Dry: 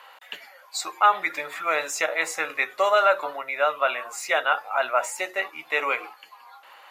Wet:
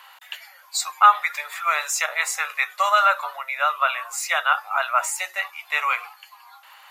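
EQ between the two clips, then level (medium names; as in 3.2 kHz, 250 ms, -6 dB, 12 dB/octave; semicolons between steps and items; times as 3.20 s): high-pass 740 Hz 24 dB/octave; treble shelf 4.4 kHz +8.5 dB; dynamic bell 1.2 kHz, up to +6 dB, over -37 dBFS, Q 3.7; 0.0 dB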